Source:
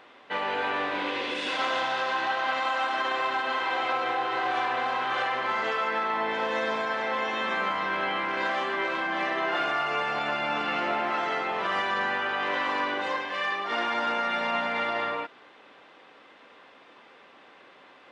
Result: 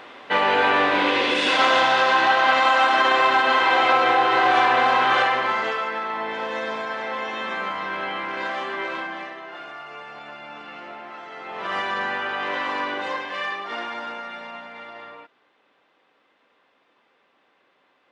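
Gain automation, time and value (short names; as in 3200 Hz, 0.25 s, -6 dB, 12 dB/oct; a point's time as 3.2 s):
5.11 s +10 dB
5.95 s 0 dB
8.99 s 0 dB
9.42 s -10.5 dB
11.31 s -10.5 dB
11.74 s +1.5 dB
13.4 s +1.5 dB
14.69 s -11 dB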